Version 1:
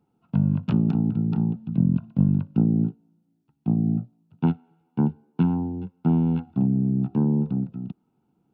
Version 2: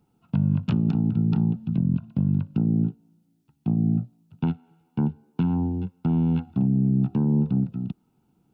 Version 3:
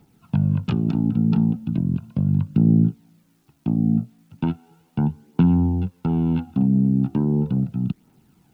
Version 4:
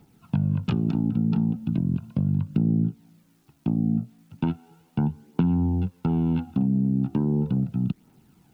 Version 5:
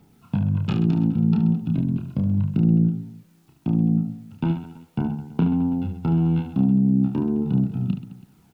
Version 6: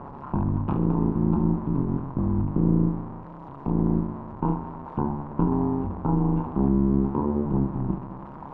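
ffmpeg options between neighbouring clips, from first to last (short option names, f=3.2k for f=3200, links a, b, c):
-af "highshelf=f=2k:g=8.5,alimiter=limit=-17dB:level=0:latency=1:release=247,lowshelf=f=120:g=10"
-filter_complex "[0:a]asplit=2[a][b];[b]alimiter=limit=-24dB:level=0:latency=1:release=303,volume=1dB[c];[a][c]amix=inputs=2:normalize=0,acrusher=bits=10:mix=0:aa=0.000001,aphaser=in_gain=1:out_gain=1:delay=4.6:decay=0.38:speed=0.37:type=triangular"
-af "acompressor=threshold=-20dB:ratio=3"
-af "aecho=1:1:30|72|130.8|213.1|328.4:0.631|0.398|0.251|0.158|0.1"
-af "aeval=exprs='val(0)+0.5*0.0237*sgn(val(0))':c=same,tremolo=f=140:d=0.919,lowpass=f=1k:t=q:w=4.9"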